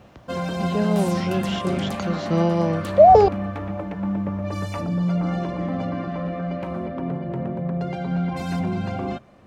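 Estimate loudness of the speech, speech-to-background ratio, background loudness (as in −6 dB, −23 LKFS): −19.5 LKFS, 7.5 dB, −27.0 LKFS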